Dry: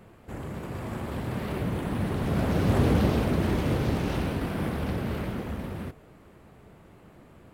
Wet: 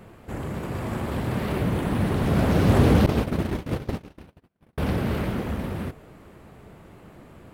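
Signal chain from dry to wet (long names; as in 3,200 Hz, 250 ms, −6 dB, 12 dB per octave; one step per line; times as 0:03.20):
0:03.06–0:04.78: noise gate −23 dBFS, range −55 dB
level +5 dB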